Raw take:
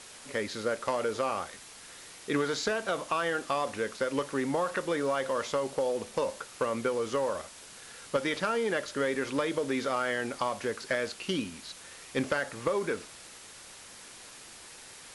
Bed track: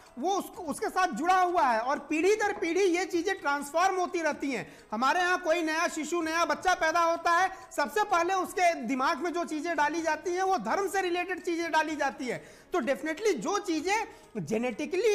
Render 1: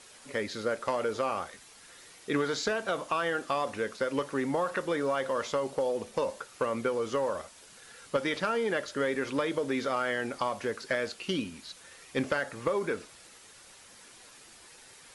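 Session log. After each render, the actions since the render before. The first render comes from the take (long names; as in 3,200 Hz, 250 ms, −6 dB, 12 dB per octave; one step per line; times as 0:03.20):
broadband denoise 6 dB, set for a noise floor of −49 dBFS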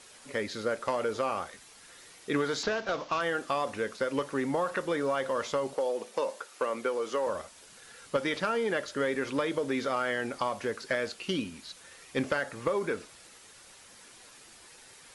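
0:02.63–0:03.21: variable-slope delta modulation 32 kbit/s
0:05.74–0:07.27: high-pass filter 310 Hz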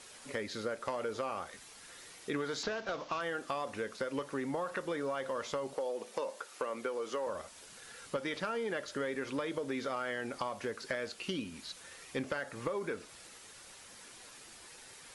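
downward compressor 2 to 1, threshold −38 dBFS, peak gain reduction 8.5 dB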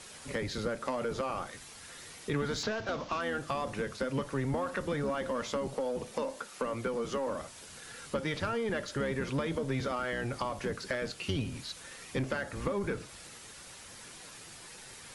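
sub-octave generator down 1 octave, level +2 dB
in parallel at −5 dB: soft clipping −36 dBFS, distortion −9 dB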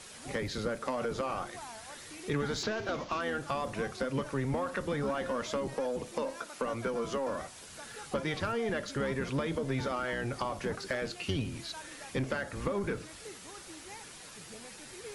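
mix in bed track −21.5 dB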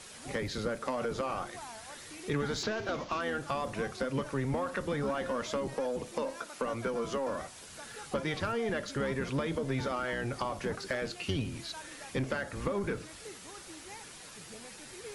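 no processing that can be heard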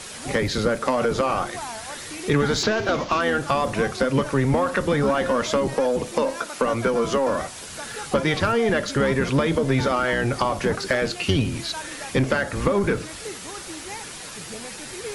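level +12 dB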